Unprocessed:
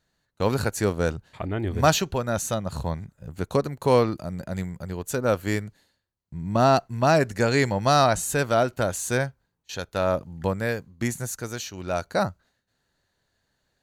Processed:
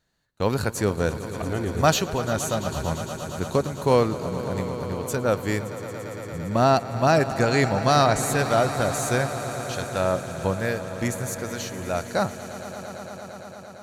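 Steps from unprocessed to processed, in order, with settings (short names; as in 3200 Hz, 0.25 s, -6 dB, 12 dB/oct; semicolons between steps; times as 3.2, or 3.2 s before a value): swelling echo 0.114 s, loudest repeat 5, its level -16 dB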